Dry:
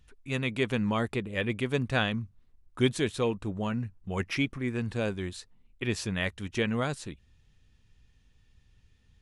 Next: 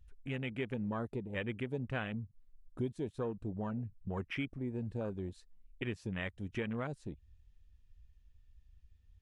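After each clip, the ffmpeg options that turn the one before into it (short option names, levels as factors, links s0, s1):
-af "acompressor=threshold=0.00794:ratio=2.5,afwtdn=0.00562,volume=1.33"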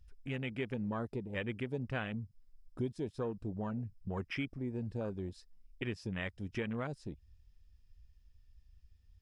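-af "equalizer=f=5100:t=o:w=0.21:g=12.5"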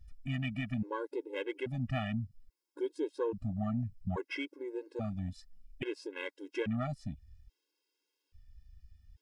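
-af "aeval=exprs='0.0708*(cos(1*acos(clip(val(0)/0.0708,-1,1)))-cos(1*PI/2))+0.000891*(cos(8*acos(clip(val(0)/0.0708,-1,1)))-cos(8*PI/2))':c=same,afftfilt=real='re*gt(sin(2*PI*0.6*pts/sr)*(1-2*mod(floor(b*sr/1024/280),2)),0)':imag='im*gt(sin(2*PI*0.6*pts/sr)*(1-2*mod(floor(b*sr/1024/280),2)),0)':win_size=1024:overlap=0.75,volume=1.78"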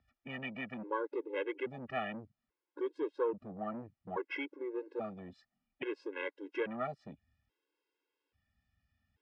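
-filter_complex "[0:a]acrossover=split=430|880[s0][s1][s2];[s0]asoftclip=type=tanh:threshold=0.01[s3];[s3][s1][s2]amix=inputs=3:normalize=0,highpass=260,lowpass=2200,volume=1.41"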